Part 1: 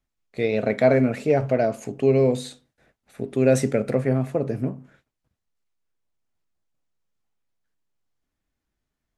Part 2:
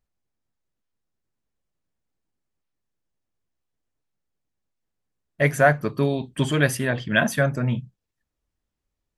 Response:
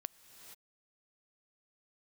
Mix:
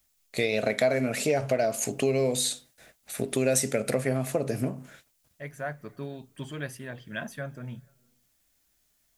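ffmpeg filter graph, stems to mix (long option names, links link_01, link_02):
-filter_complex "[0:a]equalizer=frequency=630:width_type=o:width=0.43:gain=4.5,crystalizer=i=7.5:c=0,volume=1dB,asplit=2[link_01][link_02];[1:a]volume=-16.5dB,asplit=2[link_03][link_04];[link_04]volume=-13.5dB[link_05];[link_02]apad=whole_len=404599[link_06];[link_03][link_06]sidechaincompress=threshold=-32dB:ratio=8:attack=7.1:release=1050[link_07];[2:a]atrim=start_sample=2205[link_08];[link_05][link_08]afir=irnorm=-1:irlink=0[link_09];[link_01][link_07][link_09]amix=inputs=3:normalize=0,acompressor=threshold=-25dB:ratio=3"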